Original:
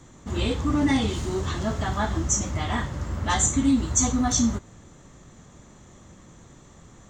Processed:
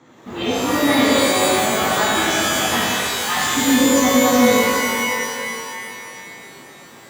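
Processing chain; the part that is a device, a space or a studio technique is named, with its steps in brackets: early digital voice recorder (band-pass 230–3500 Hz; block-companded coder 7-bit); 2.88–3.37 s: steep high-pass 820 Hz; pitch-shifted reverb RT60 2.5 s, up +12 st, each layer -2 dB, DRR -5.5 dB; trim +2 dB

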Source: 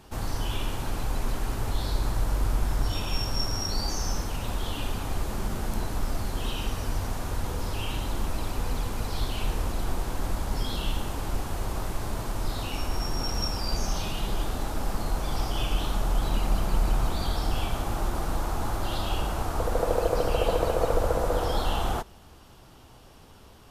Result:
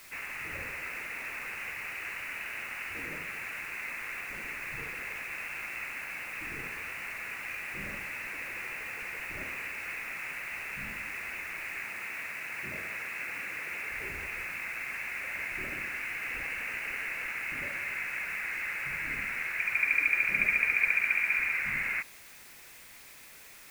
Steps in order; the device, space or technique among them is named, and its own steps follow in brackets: scrambled radio voice (band-pass 350–3100 Hz; frequency inversion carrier 2.9 kHz; white noise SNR 17 dB); 11.84–13.90 s: high-pass 80 Hz

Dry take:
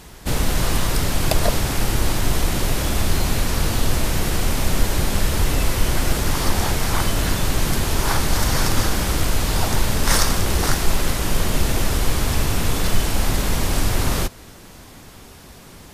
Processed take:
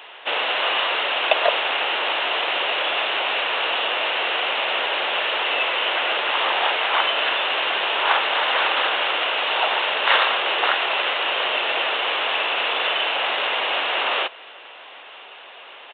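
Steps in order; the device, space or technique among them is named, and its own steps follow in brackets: musical greeting card (resampled via 8 kHz; high-pass 540 Hz 24 dB/octave; peaking EQ 2.8 kHz +9 dB 0.31 oct); trim +5.5 dB

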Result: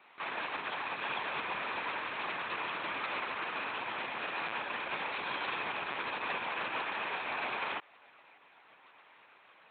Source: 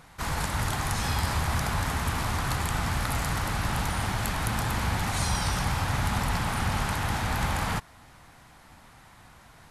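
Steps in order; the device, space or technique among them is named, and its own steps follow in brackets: talking toy (LPC vocoder at 8 kHz; high-pass 460 Hz 12 dB/octave; peaking EQ 2.5 kHz +9 dB 0.26 oct); trim -6 dB

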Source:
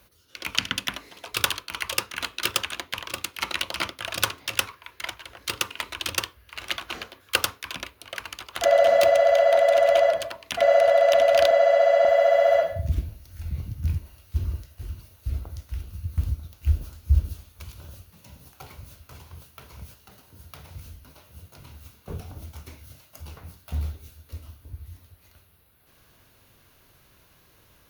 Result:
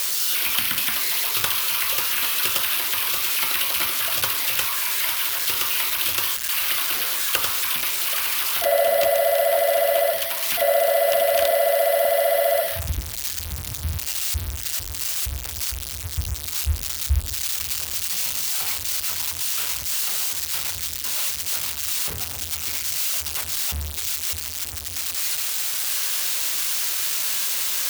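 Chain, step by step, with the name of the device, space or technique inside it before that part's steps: budget class-D amplifier (dead-time distortion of 0.067 ms; zero-crossing glitches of -7.5 dBFS); trim -2 dB

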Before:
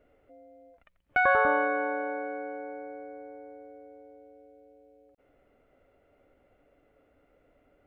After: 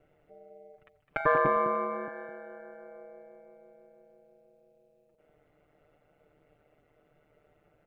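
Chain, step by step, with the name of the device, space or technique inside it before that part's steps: 1.20–2.08 s: peaking EQ 220 Hz +14 dB 1 oct; delay 209 ms -9.5 dB; feedback echo behind a high-pass 295 ms, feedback 35%, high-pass 1.7 kHz, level -11 dB; ring-modulated robot voice (ring modulator 76 Hz; comb 6.8 ms, depth 68%)

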